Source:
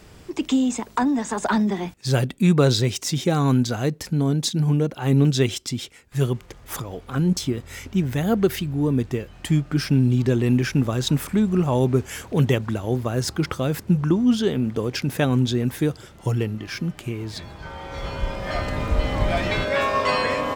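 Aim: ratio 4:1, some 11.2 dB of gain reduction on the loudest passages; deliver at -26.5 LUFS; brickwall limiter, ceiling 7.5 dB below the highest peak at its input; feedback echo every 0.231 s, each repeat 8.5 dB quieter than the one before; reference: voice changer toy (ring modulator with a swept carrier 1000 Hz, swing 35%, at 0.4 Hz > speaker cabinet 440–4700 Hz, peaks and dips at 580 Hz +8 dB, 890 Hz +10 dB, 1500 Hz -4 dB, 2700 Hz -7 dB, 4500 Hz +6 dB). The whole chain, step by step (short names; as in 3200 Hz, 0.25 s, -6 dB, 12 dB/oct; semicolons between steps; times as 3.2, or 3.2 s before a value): compressor 4:1, threshold -27 dBFS; limiter -21.5 dBFS; feedback echo 0.231 s, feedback 38%, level -8.5 dB; ring modulator with a swept carrier 1000 Hz, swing 35%, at 0.4 Hz; speaker cabinet 440–4700 Hz, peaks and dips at 580 Hz +8 dB, 890 Hz +10 dB, 1500 Hz -4 dB, 2700 Hz -7 dB, 4500 Hz +6 dB; gain +3 dB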